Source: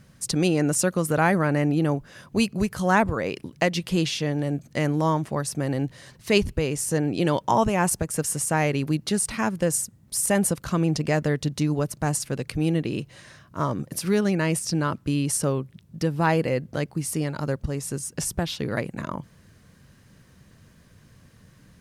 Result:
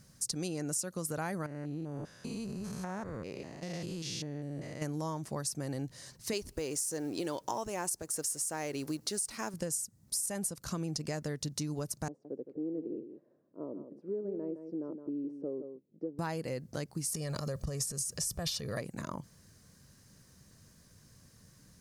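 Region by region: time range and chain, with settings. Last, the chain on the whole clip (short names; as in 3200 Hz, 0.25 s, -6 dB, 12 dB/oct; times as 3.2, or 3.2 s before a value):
1.46–4.82 stepped spectrum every 0.2 s + high shelf 4300 Hz -8.5 dB + compressor 4:1, threshold -28 dBFS
6.33–9.54 G.711 law mismatch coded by mu + resonant low shelf 240 Hz -6.5 dB, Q 1.5
12.08–16.19 Butterworth band-pass 380 Hz, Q 1.5 + echo 0.165 s -10 dB
17.14–18.81 comb 1.7 ms, depth 56% + transient shaper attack -2 dB, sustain +11 dB
whole clip: resonant high shelf 4000 Hz +8 dB, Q 1.5; compressor, threshold -25 dBFS; gain -7.5 dB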